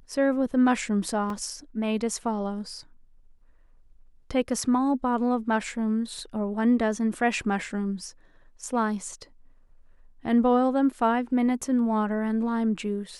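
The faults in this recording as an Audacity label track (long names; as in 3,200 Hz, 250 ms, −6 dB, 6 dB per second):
1.300000	1.300000	drop-out 2.1 ms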